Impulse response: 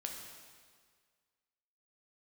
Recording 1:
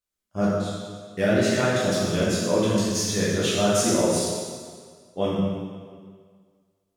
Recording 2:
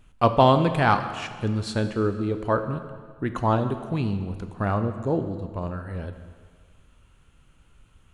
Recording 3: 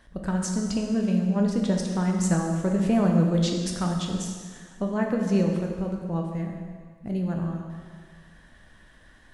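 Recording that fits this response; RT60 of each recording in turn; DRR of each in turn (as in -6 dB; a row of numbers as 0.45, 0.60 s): 3; 1.8, 1.8, 1.8 s; -8.0, 8.0, 1.0 dB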